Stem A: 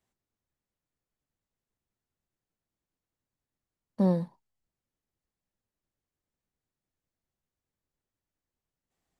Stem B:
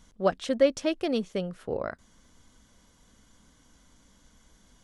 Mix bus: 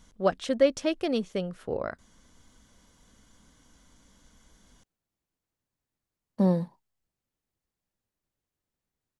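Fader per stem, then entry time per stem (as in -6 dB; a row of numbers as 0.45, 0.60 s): +1.5, 0.0 dB; 2.40, 0.00 s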